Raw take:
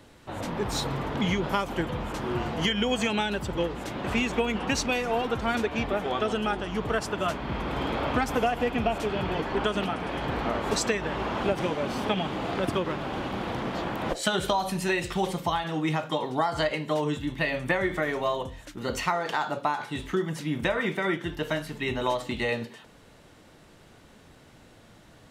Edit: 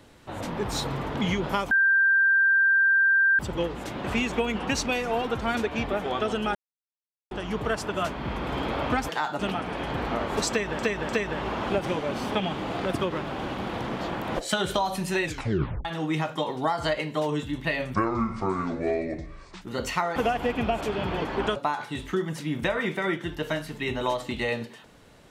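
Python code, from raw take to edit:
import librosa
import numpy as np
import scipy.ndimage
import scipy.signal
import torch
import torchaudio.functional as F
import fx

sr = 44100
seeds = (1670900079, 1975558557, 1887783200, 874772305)

y = fx.edit(x, sr, fx.bleep(start_s=1.71, length_s=1.68, hz=1580.0, db=-17.0),
    fx.insert_silence(at_s=6.55, length_s=0.76),
    fx.swap(start_s=8.33, length_s=1.4, other_s=19.26, other_length_s=0.3),
    fx.repeat(start_s=10.83, length_s=0.3, count=3),
    fx.tape_stop(start_s=14.98, length_s=0.61),
    fx.speed_span(start_s=17.68, length_s=1.04, speed=0.62), tone=tone)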